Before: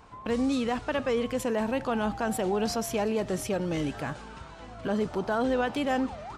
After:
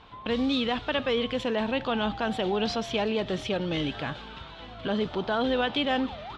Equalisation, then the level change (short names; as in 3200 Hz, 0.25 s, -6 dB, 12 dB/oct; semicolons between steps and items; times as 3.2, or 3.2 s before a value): synth low-pass 3500 Hz, resonance Q 4.4; 0.0 dB